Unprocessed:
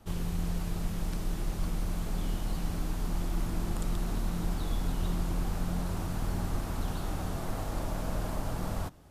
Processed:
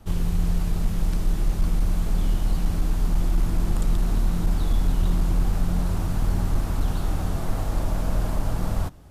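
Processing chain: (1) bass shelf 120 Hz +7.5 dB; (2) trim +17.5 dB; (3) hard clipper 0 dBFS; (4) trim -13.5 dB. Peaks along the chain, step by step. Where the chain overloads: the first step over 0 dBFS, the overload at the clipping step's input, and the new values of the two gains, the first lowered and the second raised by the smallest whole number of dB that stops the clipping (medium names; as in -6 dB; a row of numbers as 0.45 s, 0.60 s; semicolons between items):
-13.5 dBFS, +4.0 dBFS, 0.0 dBFS, -13.5 dBFS; step 2, 4.0 dB; step 2 +13.5 dB, step 4 -9.5 dB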